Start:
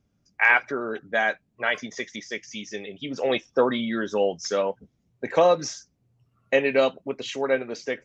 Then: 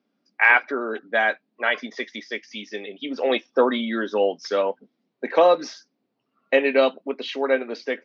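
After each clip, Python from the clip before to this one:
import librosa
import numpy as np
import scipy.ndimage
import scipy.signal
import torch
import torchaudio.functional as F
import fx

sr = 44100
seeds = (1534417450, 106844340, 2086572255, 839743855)

y = scipy.signal.sosfilt(scipy.signal.ellip(3, 1.0, 40, [240.0, 4600.0], 'bandpass', fs=sr, output='sos'), x)
y = F.gain(torch.from_numpy(y), 3.0).numpy()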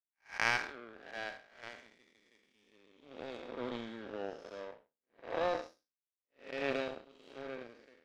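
y = fx.spec_blur(x, sr, span_ms=272.0)
y = fx.power_curve(y, sr, exponent=2.0)
y = F.gain(torch.from_numpy(y), -3.0).numpy()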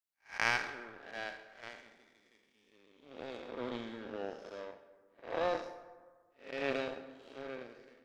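y = fx.rev_plate(x, sr, seeds[0], rt60_s=1.5, hf_ratio=0.45, predelay_ms=105, drr_db=14.0)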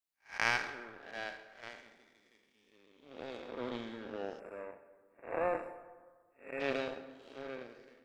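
y = fx.spec_box(x, sr, start_s=4.39, length_s=2.21, low_hz=2800.0, high_hz=7200.0, gain_db=-25)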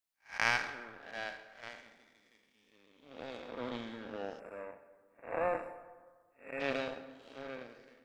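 y = fx.peak_eq(x, sr, hz=380.0, db=-6.0, octaves=0.4)
y = F.gain(torch.from_numpy(y), 1.0).numpy()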